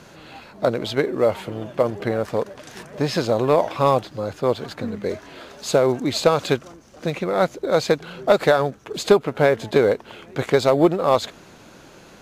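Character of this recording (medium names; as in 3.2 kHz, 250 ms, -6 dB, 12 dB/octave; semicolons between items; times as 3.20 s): noise floor -47 dBFS; spectral tilt -4.5 dB/octave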